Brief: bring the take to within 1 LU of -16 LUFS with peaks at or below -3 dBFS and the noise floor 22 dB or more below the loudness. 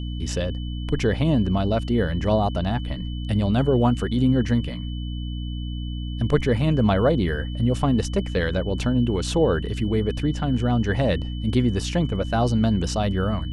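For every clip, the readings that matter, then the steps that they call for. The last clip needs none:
hum 60 Hz; harmonics up to 300 Hz; hum level -26 dBFS; steady tone 3000 Hz; tone level -42 dBFS; loudness -23.0 LUFS; peak -7.0 dBFS; loudness target -16.0 LUFS
-> de-hum 60 Hz, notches 5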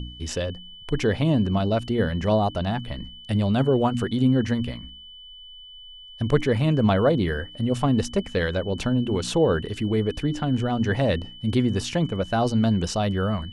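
hum none; steady tone 3000 Hz; tone level -42 dBFS
-> notch 3000 Hz, Q 30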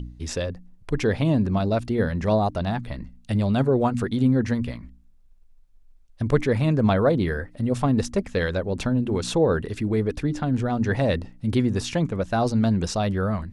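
steady tone none; loudness -24.0 LUFS; peak -7.5 dBFS; loudness target -16.0 LUFS
-> gain +8 dB; limiter -3 dBFS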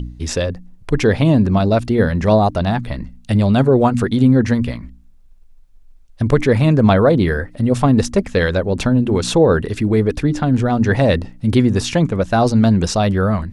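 loudness -16.0 LUFS; peak -3.0 dBFS; noise floor -44 dBFS

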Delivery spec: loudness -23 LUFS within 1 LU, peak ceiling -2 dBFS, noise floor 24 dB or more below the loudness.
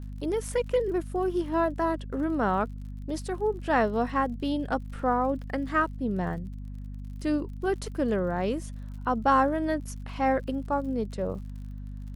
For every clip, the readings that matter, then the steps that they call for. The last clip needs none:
ticks 55/s; hum 50 Hz; harmonics up to 250 Hz; hum level -35 dBFS; loudness -28.5 LUFS; peak -11.5 dBFS; loudness target -23.0 LUFS
-> de-click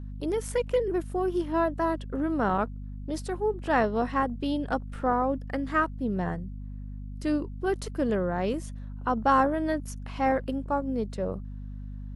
ticks 0.082/s; hum 50 Hz; harmonics up to 250 Hz; hum level -35 dBFS
-> de-hum 50 Hz, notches 5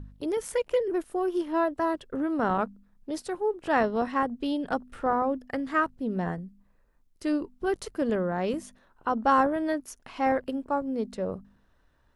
hum none; loudness -29.0 LUFS; peak -10.0 dBFS; loudness target -23.0 LUFS
-> gain +6 dB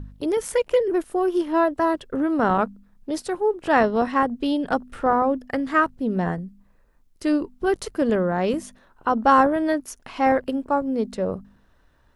loudness -23.0 LUFS; peak -4.0 dBFS; noise floor -59 dBFS

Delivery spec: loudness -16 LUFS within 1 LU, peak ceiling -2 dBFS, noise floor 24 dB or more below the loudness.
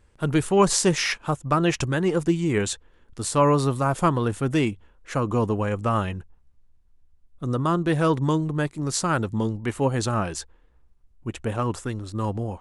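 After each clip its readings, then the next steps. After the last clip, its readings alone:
loudness -24.0 LUFS; peak -5.0 dBFS; loudness target -16.0 LUFS
-> gain +8 dB; limiter -2 dBFS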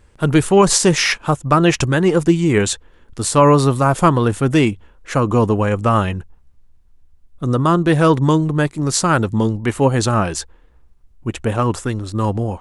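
loudness -16.5 LUFS; peak -2.0 dBFS; noise floor -50 dBFS

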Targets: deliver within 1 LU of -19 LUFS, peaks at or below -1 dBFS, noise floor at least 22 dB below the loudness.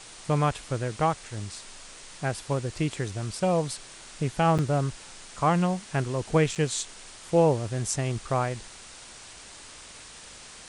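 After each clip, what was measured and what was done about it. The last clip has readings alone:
dropouts 2; longest dropout 7.3 ms; noise floor -47 dBFS; noise floor target -50 dBFS; loudness -27.5 LUFS; peak -10.5 dBFS; loudness target -19.0 LUFS
-> interpolate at 4.58/6.55, 7.3 ms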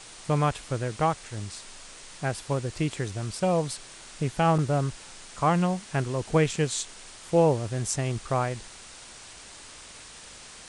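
dropouts 0; noise floor -47 dBFS; noise floor target -50 dBFS
-> denoiser 6 dB, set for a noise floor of -47 dBFS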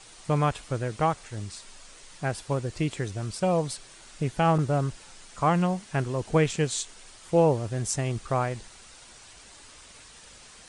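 noise floor -50 dBFS; loudness -27.5 LUFS; peak -10.5 dBFS; loudness target -19.0 LUFS
-> gain +8.5 dB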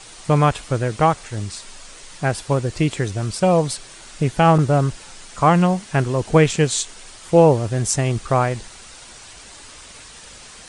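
loudness -19.0 LUFS; peak -2.0 dBFS; noise floor -42 dBFS

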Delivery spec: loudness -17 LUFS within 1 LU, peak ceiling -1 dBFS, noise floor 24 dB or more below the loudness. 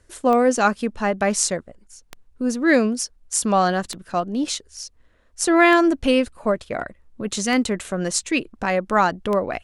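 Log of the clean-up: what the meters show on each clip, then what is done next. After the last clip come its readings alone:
clicks 6; loudness -21.0 LUFS; peak -1.5 dBFS; loudness target -17.0 LUFS
-> de-click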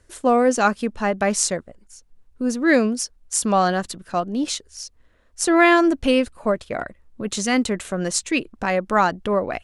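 clicks 0; loudness -21.0 LUFS; peak -1.5 dBFS; loudness target -17.0 LUFS
-> gain +4 dB; limiter -1 dBFS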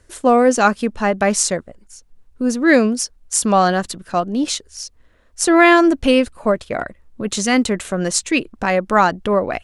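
loudness -17.0 LUFS; peak -1.0 dBFS; noise floor -53 dBFS

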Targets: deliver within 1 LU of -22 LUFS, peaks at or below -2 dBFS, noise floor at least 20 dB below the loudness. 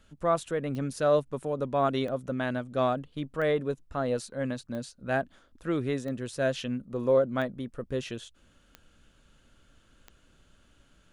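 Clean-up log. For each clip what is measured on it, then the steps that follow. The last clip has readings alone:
clicks 8; loudness -30.0 LUFS; peak -13.5 dBFS; loudness target -22.0 LUFS
-> de-click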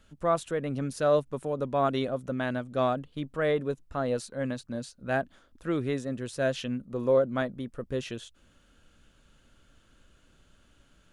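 clicks 0; loudness -30.0 LUFS; peak -13.5 dBFS; loudness target -22.0 LUFS
-> gain +8 dB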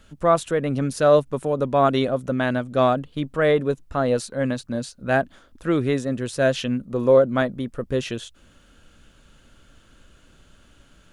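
loudness -22.0 LUFS; peak -5.5 dBFS; noise floor -55 dBFS

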